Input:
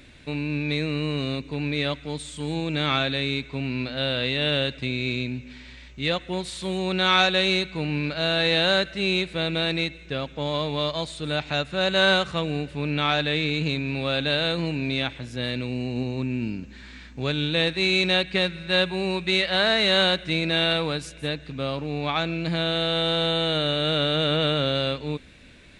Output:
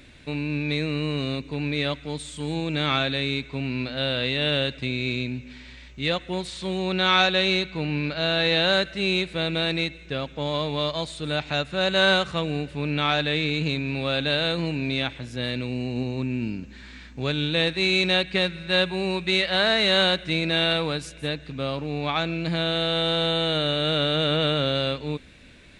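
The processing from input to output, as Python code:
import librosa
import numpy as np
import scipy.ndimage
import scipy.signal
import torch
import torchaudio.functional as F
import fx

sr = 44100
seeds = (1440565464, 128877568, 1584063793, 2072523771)

y = fx.lowpass(x, sr, hz=7000.0, slope=12, at=(6.47, 8.73))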